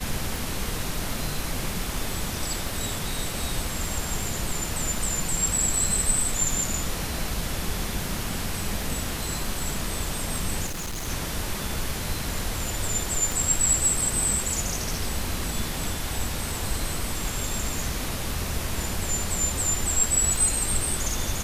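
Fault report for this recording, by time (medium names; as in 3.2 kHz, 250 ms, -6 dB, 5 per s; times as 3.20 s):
tick 78 rpm
10.66–11.08 s: clipped -28.5 dBFS
13.32 s: pop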